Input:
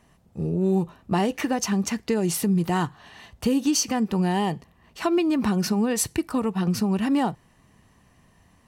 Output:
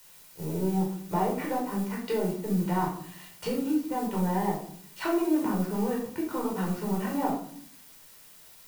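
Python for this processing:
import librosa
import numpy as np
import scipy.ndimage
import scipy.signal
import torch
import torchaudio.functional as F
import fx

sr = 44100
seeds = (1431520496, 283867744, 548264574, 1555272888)

y = fx.highpass(x, sr, hz=580.0, slope=6)
y = fx.env_lowpass_down(y, sr, base_hz=980.0, full_db=-26.0)
y = fx.dmg_noise_colour(y, sr, seeds[0], colour='blue', level_db=-45.0)
y = np.sign(y) * np.maximum(np.abs(y) - 10.0 ** (-45.5 / 20.0), 0.0)
y = fx.room_shoebox(y, sr, seeds[1], volume_m3=750.0, walls='furnished', distance_m=4.7)
y = F.gain(torch.from_numpy(y), -4.5).numpy()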